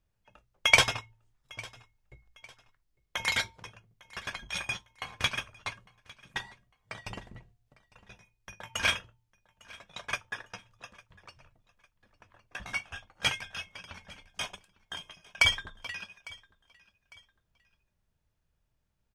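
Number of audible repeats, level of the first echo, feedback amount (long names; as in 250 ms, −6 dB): 2, −22.5 dB, 35%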